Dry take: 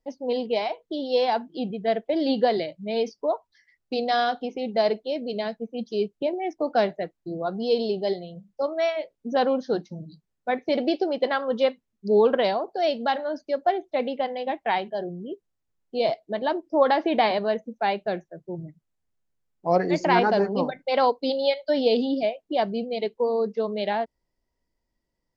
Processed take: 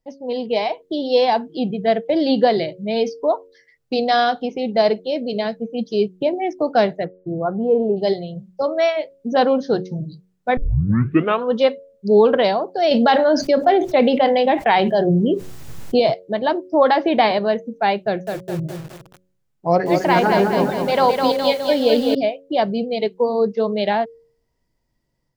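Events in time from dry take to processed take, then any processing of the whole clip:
0.59–1.38 s: band-stop 1.4 kHz, Q 7.1
7.04–7.96 s: low-pass 2.1 kHz -> 1.2 kHz 24 dB/octave
10.57 s: tape start 0.96 s
12.91–16.00 s: level flattener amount 70%
18.02–22.15 s: bit-crushed delay 207 ms, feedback 55%, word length 7-bit, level -4.5 dB
whole clip: peaking EQ 130 Hz +10 dB 0.64 oct; de-hum 91.89 Hz, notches 6; level rider gain up to 6.5 dB

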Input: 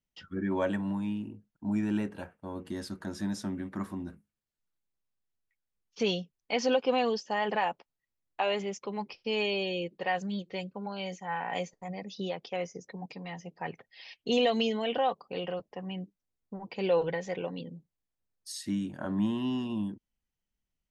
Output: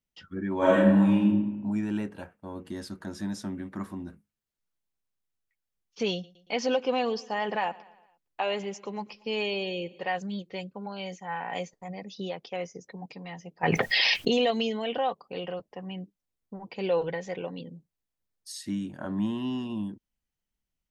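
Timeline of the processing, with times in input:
0.57–1.30 s: reverb throw, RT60 1.1 s, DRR -9 dB
6.12–10.06 s: feedback delay 115 ms, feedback 54%, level -21.5 dB
13.63–14.51 s: level flattener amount 100%

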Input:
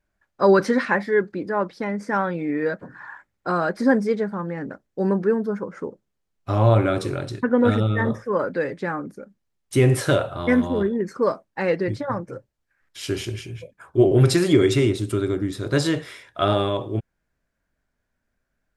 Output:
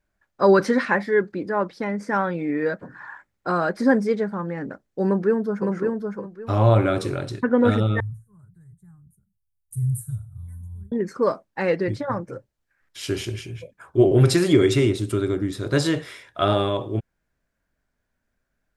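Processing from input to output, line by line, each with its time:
5.05–5.70 s: echo throw 560 ms, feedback 20%, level -3.5 dB
8.00–10.92 s: inverse Chebyshev band-stop 240–5400 Hz

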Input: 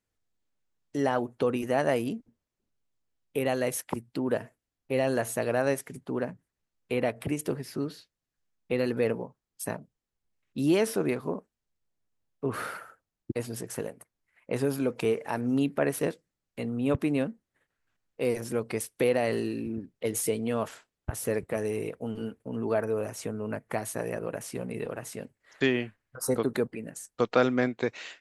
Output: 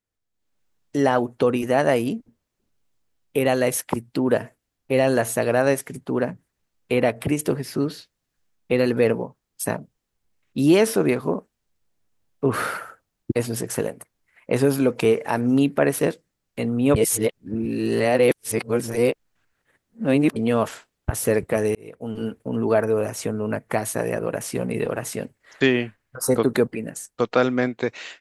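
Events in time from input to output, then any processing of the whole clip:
16.96–20.36 s: reverse
21.75–22.36 s: fade in
whole clip: level rider gain up to 13.5 dB; trim -3.5 dB

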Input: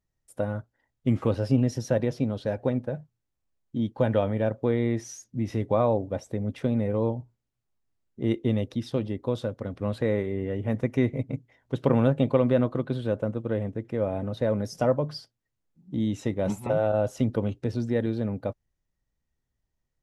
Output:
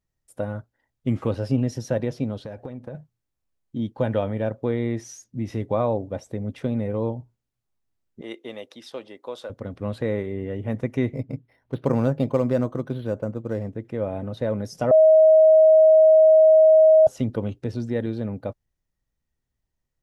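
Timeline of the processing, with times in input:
2.36–2.95 s: compression 12:1, threshold -30 dBFS
8.21–9.50 s: high-pass 590 Hz
11.14–13.71 s: decimation joined by straight lines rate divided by 6×
14.91–17.07 s: bleep 632 Hz -10 dBFS

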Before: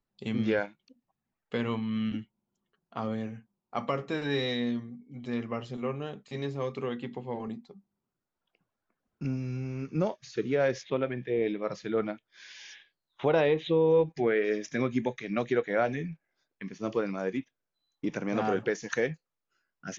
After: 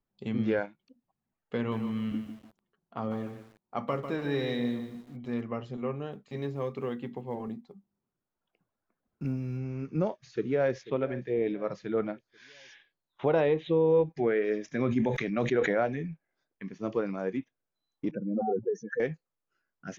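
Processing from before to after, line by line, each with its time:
1.57–5.41 s: bit-crushed delay 148 ms, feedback 35%, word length 8-bit, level -8.5 dB
6.12–9.60 s: block-companded coder 7-bit
10.20–10.73 s: echo throw 490 ms, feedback 50%, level -16.5 dB
14.79–15.78 s: decay stretcher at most 25 dB/s
18.11–19.00 s: spectral contrast enhancement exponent 3.1
whole clip: treble shelf 2.5 kHz -10 dB

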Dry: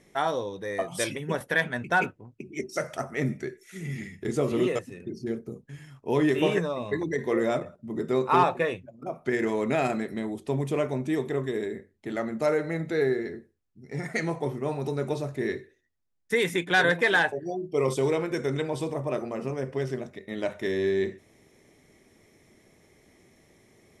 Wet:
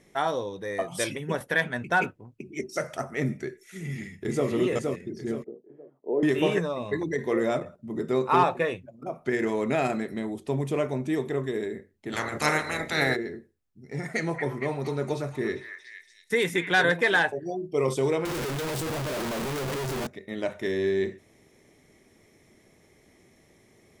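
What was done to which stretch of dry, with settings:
3.82–4.48 s: echo throw 470 ms, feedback 35%, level -3.5 dB
5.44–6.23 s: Butterworth band-pass 450 Hz, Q 1.2
12.12–13.15 s: spectral peaks clipped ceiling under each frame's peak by 27 dB
14.11–16.77 s: repeats whose band climbs or falls 231 ms, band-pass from 1.5 kHz, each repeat 0.7 oct, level -2.5 dB
18.25–20.07 s: one-bit comparator

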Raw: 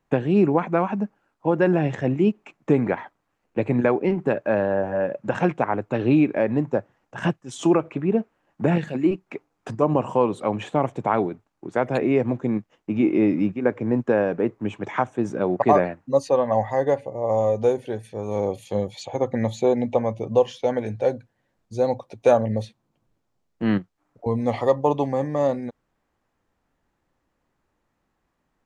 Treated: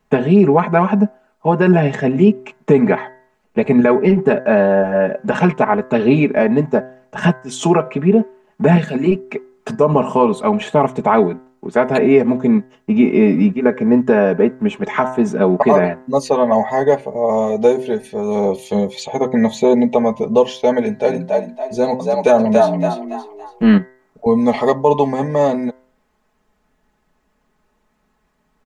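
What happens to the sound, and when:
20.80–23.68 s: frequency-shifting echo 282 ms, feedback 37%, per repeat +65 Hz, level -4.5 dB
whole clip: comb 4.7 ms, depth 83%; de-hum 128.7 Hz, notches 16; loudness maximiser +8 dB; trim -1 dB

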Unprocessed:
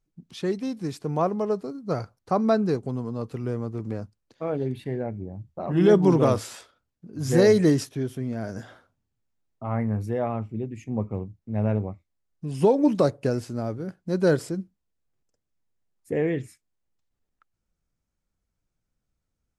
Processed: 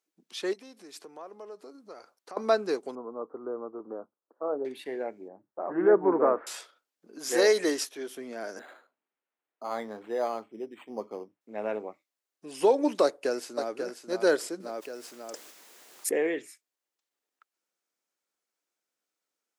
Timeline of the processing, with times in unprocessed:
0.53–2.37 s: compression 5:1, threshold -39 dBFS
2.95–4.65 s: elliptic low-pass 1.3 kHz, stop band 50 dB
5.28–6.47 s: steep low-pass 1.7 kHz
7.18–8.08 s: bass shelf 180 Hz -12 dB
8.59–11.41 s: decimation joined by straight lines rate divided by 8×
13.03–13.72 s: echo throw 540 ms, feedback 15%, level -7 dB
14.60–16.27 s: level flattener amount 70%
whole clip: high-pass 320 Hz 24 dB/octave; tilt shelf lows -3 dB

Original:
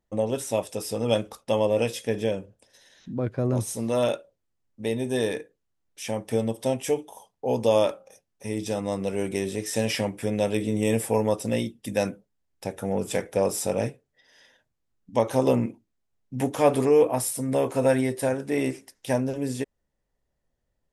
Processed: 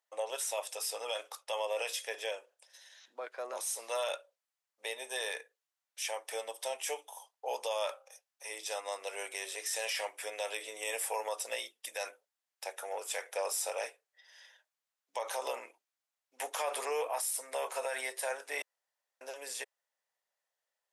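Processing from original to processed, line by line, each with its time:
18.62–19.21 s: room tone
whole clip: Bessel high-pass 940 Hz, order 6; peak limiter -25 dBFS

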